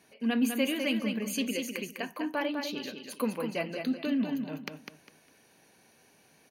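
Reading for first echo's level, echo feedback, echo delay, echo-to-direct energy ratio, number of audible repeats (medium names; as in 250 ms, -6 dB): -6.0 dB, 26%, 202 ms, -5.5 dB, 3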